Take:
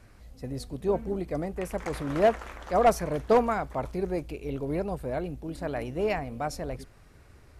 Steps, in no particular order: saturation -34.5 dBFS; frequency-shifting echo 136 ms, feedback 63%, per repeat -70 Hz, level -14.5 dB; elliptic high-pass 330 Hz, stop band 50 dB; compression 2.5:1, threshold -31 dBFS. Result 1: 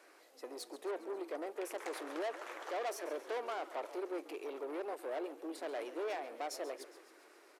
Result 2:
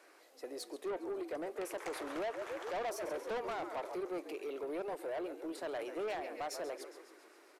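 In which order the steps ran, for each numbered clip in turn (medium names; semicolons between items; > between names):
compression > saturation > frequency-shifting echo > elliptic high-pass; frequency-shifting echo > compression > elliptic high-pass > saturation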